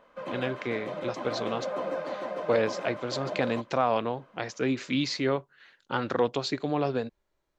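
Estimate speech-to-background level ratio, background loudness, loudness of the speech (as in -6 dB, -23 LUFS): 5.5 dB, -36.0 LUFS, -30.5 LUFS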